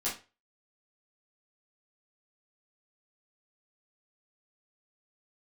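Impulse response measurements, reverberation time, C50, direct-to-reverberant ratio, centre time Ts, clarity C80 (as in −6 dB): 0.30 s, 7.5 dB, −9.5 dB, 29 ms, 15.0 dB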